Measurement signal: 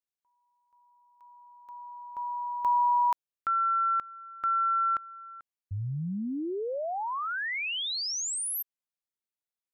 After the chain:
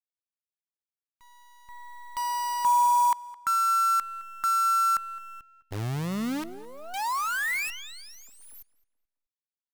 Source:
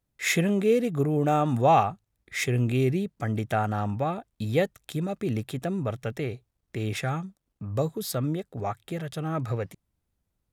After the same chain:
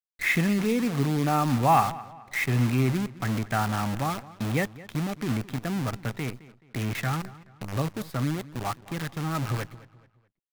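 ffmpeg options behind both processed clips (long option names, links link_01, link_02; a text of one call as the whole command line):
ffmpeg -i in.wav -filter_complex "[0:a]equalizer=frequency=125:width_type=o:width=1:gain=7,equalizer=frequency=250:width_type=o:width=1:gain=9,equalizer=frequency=500:width_type=o:width=1:gain=-5,equalizer=frequency=1000:width_type=o:width=1:gain=10,equalizer=frequency=2000:width_type=o:width=1:gain=10,equalizer=frequency=8000:width_type=o:width=1:gain=-10,acrusher=bits=5:dc=4:mix=0:aa=0.000001,asplit=2[link_01][link_02];[link_02]adelay=214,lowpass=frequency=4400:poles=1,volume=-18.5dB,asplit=2[link_03][link_04];[link_04]adelay=214,lowpass=frequency=4400:poles=1,volume=0.38,asplit=2[link_05][link_06];[link_06]adelay=214,lowpass=frequency=4400:poles=1,volume=0.38[link_07];[link_01][link_03][link_05][link_07]amix=inputs=4:normalize=0,volume=-7.5dB" out.wav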